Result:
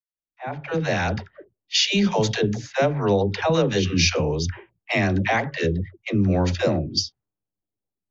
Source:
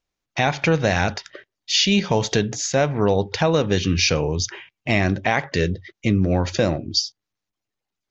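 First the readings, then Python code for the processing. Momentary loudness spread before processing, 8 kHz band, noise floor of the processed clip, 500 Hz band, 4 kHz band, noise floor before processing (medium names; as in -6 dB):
7 LU, no reading, under -85 dBFS, -1.5 dB, -2.0 dB, -85 dBFS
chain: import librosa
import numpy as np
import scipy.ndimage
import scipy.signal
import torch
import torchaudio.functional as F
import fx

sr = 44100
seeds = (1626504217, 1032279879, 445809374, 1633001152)

y = fx.fade_in_head(x, sr, length_s=1.21)
y = fx.env_lowpass(y, sr, base_hz=500.0, full_db=-15.0)
y = fx.dispersion(y, sr, late='lows', ms=98.0, hz=410.0)
y = F.gain(torch.from_numpy(y), -1.0).numpy()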